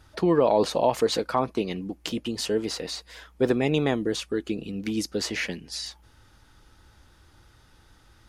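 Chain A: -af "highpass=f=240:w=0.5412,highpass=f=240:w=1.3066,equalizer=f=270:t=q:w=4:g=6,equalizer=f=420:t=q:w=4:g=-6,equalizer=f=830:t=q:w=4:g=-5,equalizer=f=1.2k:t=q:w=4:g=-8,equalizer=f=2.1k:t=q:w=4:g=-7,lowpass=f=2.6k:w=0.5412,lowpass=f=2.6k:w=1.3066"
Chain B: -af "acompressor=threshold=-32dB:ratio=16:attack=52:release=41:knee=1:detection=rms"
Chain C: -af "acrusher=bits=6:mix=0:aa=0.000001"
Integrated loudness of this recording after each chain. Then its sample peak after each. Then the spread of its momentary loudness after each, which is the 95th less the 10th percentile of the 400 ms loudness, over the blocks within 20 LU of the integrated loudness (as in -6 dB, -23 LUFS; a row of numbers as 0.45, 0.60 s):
-28.5, -32.5, -26.5 LUFS; -11.0, -11.0, -10.0 dBFS; 12, 4, 11 LU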